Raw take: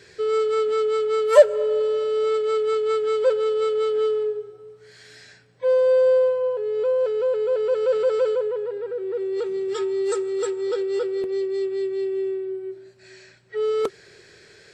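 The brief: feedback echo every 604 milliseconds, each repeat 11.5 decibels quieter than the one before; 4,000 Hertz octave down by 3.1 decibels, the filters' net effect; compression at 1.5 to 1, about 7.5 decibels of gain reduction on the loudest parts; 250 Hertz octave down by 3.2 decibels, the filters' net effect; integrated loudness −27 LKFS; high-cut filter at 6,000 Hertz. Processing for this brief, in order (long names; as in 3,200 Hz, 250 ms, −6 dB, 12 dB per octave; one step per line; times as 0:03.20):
low-pass filter 6,000 Hz
parametric band 250 Hz −8 dB
parametric band 4,000 Hz −3.5 dB
downward compressor 1.5 to 1, threshold −28 dBFS
repeating echo 604 ms, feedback 27%, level −11.5 dB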